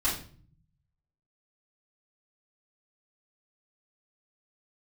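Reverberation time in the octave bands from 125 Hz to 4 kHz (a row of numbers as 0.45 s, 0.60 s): 1.3 s, 0.95 s, 0.50 s, 0.40 s, 0.40 s, 0.40 s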